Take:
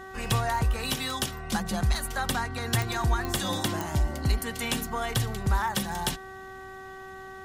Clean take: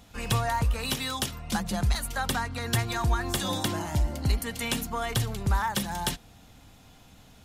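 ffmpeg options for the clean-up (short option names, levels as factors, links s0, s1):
-af "adeclick=t=4,bandreject=f=381.6:t=h:w=4,bandreject=f=763.2:t=h:w=4,bandreject=f=1144.8:t=h:w=4,bandreject=f=1526.4:t=h:w=4,bandreject=f=1908:t=h:w=4"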